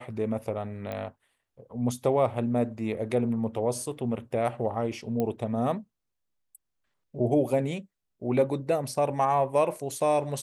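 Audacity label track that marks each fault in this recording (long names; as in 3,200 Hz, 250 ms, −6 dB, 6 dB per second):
0.920000	0.920000	click −22 dBFS
5.200000	5.200000	click −17 dBFS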